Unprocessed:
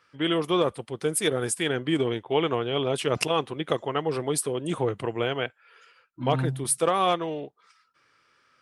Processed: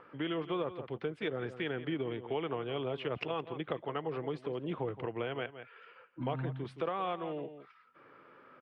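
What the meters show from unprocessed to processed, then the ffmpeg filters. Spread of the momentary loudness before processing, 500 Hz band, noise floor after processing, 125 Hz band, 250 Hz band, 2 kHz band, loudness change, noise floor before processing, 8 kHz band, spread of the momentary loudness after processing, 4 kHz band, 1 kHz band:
6 LU, -10.0 dB, -61 dBFS, -9.5 dB, -9.5 dB, -10.0 dB, -11.0 dB, -66 dBFS, under -40 dB, 6 LU, -14.5 dB, -11.0 dB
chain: -filter_complex "[0:a]lowpass=f=3k:w=0.5412,lowpass=f=3k:w=1.3066,acrossover=split=160|1000|1800[a][b][c][d];[b]acompressor=mode=upward:threshold=-44dB:ratio=2.5[e];[a][e][c][d]amix=inputs=4:normalize=0,asplit=2[f][g];[g]adelay=169.1,volume=-15dB,highshelf=f=4k:g=-3.8[h];[f][h]amix=inputs=2:normalize=0,acompressor=threshold=-36dB:ratio=2.5,volume=-1dB"

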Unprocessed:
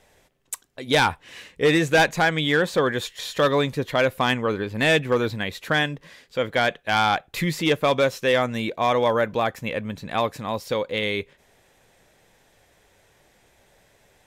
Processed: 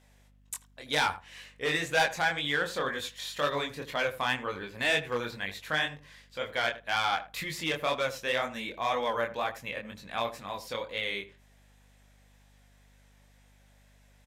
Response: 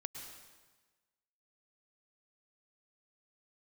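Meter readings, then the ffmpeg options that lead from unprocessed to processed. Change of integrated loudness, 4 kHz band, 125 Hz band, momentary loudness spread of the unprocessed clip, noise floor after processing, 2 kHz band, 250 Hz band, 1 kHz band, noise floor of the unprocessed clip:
-8.5 dB, -6.0 dB, -15.0 dB, 10 LU, -61 dBFS, -6.0 dB, -14.5 dB, -7.5 dB, -61 dBFS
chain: -filter_complex "[0:a]flanger=delay=20:depth=6:speed=2,equalizer=f=380:t=o:w=0.59:g=-3.5,aeval=exprs='val(0)+0.00355*(sin(2*PI*50*n/s)+sin(2*PI*2*50*n/s)/2+sin(2*PI*3*50*n/s)/3+sin(2*PI*4*50*n/s)/4+sin(2*PI*5*50*n/s)/5)':c=same,lowshelf=f=490:g=-10.5,asplit=2[a][b];[b]adelay=81,lowpass=f=1.1k:p=1,volume=-12dB,asplit=2[c][d];[d]adelay=81,lowpass=f=1.1k:p=1,volume=0.15[e];[c][e]amix=inputs=2:normalize=0[f];[a][f]amix=inputs=2:normalize=0,volume=-2.5dB"

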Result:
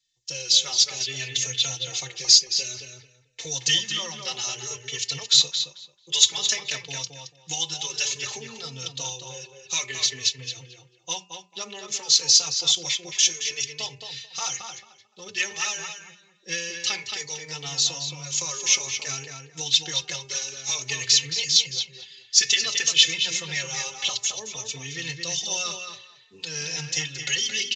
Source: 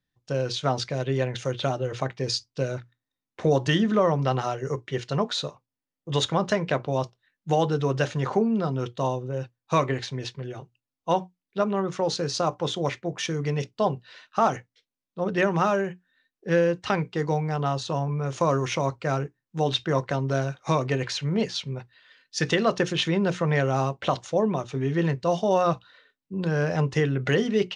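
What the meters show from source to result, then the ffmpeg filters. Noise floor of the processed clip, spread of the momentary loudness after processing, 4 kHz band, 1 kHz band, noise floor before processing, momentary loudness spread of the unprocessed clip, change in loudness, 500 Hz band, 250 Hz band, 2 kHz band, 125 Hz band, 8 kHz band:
-59 dBFS, 17 LU, +12.5 dB, -13.5 dB, under -85 dBFS, 10 LU, +3.0 dB, -17.0 dB, -18.5 dB, +1.5 dB, -15.0 dB, +18.5 dB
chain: -filter_complex "[0:a]aemphasis=mode=production:type=75fm,aecho=1:1:2.3:0.44,bandreject=f=200.9:t=h:w=4,bandreject=f=401.8:t=h:w=4,bandreject=f=602.7:t=h:w=4,bandreject=f=803.6:t=h:w=4,bandreject=f=1.0045k:t=h:w=4,bandreject=f=1.2054k:t=h:w=4,bandreject=f=1.4063k:t=h:w=4,bandreject=f=1.6072k:t=h:w=4,bandreject=f=1.8081k:t=h:w=4,bandreject=f=2.009k:t=h:w=4,bandreject=f=2.2099k:t=h:w=4,bandreject=f=2.4108k:t=h:w=4,bandreject=f=2.6117k:t=h:w=4,bandreject=f=2.8126k:t=h:w=4,acrossover=split=130|990[a][b][c];[b]acompressor=threshold=-32dB:ratio=6[d];[a][d][c]amix=inputs=3:normalize=0,aexciter=amount=5.6:drive=7.7:freq=2.1k,asplit=2[e][f];[f]adelay=221,lowpass=f=3.3k:p=1,volume=-5dB,asplit=2[g][h];[h]adelay=221,lowpass=f=3.3k:p=1,volume=0.22,asplit=2[i][j];[j]adelay=221,lowpass=f=3.3k:p=1,volume=0.22[k];[g][i][k]amix=inputs=3:normalize=0[l];[e][l]amix=inputs=2:normalize=0,aresample=16000,aresample=44100,asplit=2[m][n];[n]adelay=3.9,afreqshift=0.56[o];[m][o]amix=inputs=2:normalize=1,volume=-8dB"

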